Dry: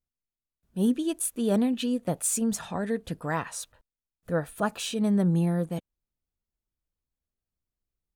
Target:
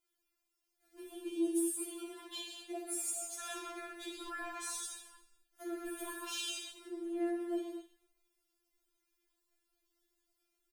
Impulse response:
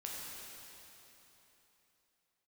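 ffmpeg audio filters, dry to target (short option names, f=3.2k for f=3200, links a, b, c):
-filter_complex "[0:a]asplit=2[a][b];[b]aeval=exprs='val(0)*gte(abs(val(0)),0.0141)':c=same,volume=-9dB[c];[a][c]amix=inputs=2:normalize=0,acompressor=threshold=-40dB:ratio=3,atempo=0.76,asoftclip=type=tanh:threshold=-30dB,bandreject=f=50:t=h:w=6,bandreject=f=100:t=h:w=6,bandreject=f=150:t=h:w=6,bandreject=f=200:t=h:w=6,bandreject=f=250:t=h:w=6,alimiter=level_in=17.5dB:limit=-24dB:level=0:latency=1:release=289,volume=-17.5dB,highpass=f=57:w=0.5412,highpass=f=57:w=1.3066,lowshelf=f=120:g=12,asplit=5[d][e][f][g][h];[e]adelay=111,afreqshift=-33,volume=-12dB[i];[f]adelay=222,afreqshift=-66,volume=-19.1dB[j];[g]adelay=333,afreqshift=-99,volume=-26.3dB[k];[h]adelay=444,afreqshift=-132,volume=-33.4dB[l];[d][i][j][k][l]amix=inputs=5:normalize=0[m];[1:a]atrim=start_sample=2205,afade=t=out:st=0.3:d=0.01,atrim=end_sample=13671[n];[m][n]afir=irnorm=-1:irlink=0,afftfilt=real='re*4*eq(mod(b,16),0)':imag='im*4*eq(mod(b,16),0)':win_size=2048:overlap=0.75,volume=15.5dB"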